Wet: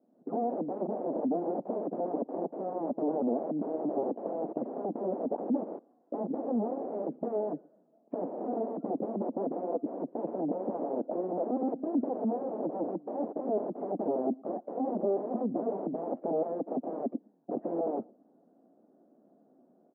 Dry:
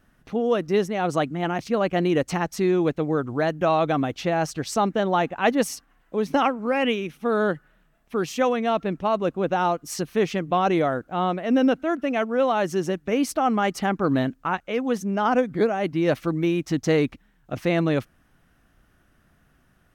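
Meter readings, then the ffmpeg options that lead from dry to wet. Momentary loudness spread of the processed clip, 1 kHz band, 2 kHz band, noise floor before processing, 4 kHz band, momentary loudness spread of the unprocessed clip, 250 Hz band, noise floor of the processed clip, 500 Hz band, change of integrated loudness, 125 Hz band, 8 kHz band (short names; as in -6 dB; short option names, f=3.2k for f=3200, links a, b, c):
6 LU, -12.5 dB, under -35 dB, -63 dBFS, under -40 dB, 5 LU, -8.5 dB, -66 dBFS, -8.5 dB, -10.0 dB, -18.0 dB, under -40 dB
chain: -filter_complex "[0:a]afftdn=nr=15:nf=-40,dynaudnorm=f=110:g=3:m=8.5dB,asplit=2[a][b];[b]alimiter=limit=-14dB:level=0:latency=1:release=189,volume=0.5dB[c];[a][c]amix=inputs=2:normalize=0,acompressor=threshold=-18dB:ratio=12,aresample=16000,aeval=exprs='0.0501*(abs(mod(val(0)/0.0501+3,4)-2)-1)':c=same,aresample=44100,crystalizer=i=6:c=0,aeval=exprs='(mod(15.8*val(0)+1,2)-1)/15.8':c=same,asuperpass=centerf=400:order=8:qfactor=0.81,asplit=2[d][e];[e]adelay=116.6,volume=-28dB,highshelf=f=4k:g=-2.62[f];[d][f]amix=inputs=2:normalize=0,volume=6dB"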